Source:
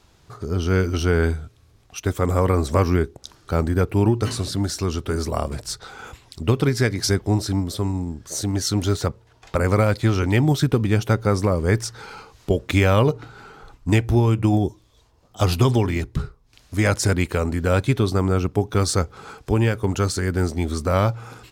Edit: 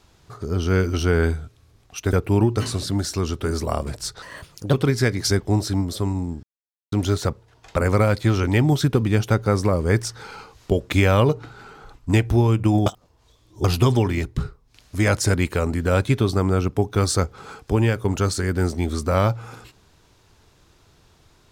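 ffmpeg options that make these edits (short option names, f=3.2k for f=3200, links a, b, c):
-filter_complex "[0:a]asplit=8[a][b][c][d][e][f][g][h];[a]atrim=end=2.132[i];[b]atrim=start=3.778:end=5.874[j];[c]atrim=start=5.87:end=6.52,asetpts=PTS-STARTPTS,asetrate=56007,aresample=44100[k];[d]atrim=start=6.516:end=8.22,asetpts=PTS-STARTPTS,afade=t=out:st=1.7:d=0.004:c=hsin[l];[e]atrim=start=8.22:end=8.71,asetpts=PTS-STARTPTS,volume=0[m];[f]atrim=start=8.71:end=14.652,asetpts=PTS-STARTPTS,afade=t=in:d=0.004:c=hsin[n];[g]atrim=start=14.648:end=15.432,asetpts=PTS-STARTPTS,areverse[o];[h]atrim=start=15.428[p];[i][j]acrossfade=d=0.004:c1=hsin:c2=hsin[q];[q][k]acrossfade=d=0.004:c1=hsin:c2=hsin[r];[l][m][n]concat=n=3:v=0:a=1[s];[r][s]acrossfade=d=0.004:c1=hsin:c2=hsin[t];[t][o]acrossfade=d=0.004:c1=hsin:c2=hsin[u];[u][p]acrossfade=d=0.004:c1=hsin:c2=hsin"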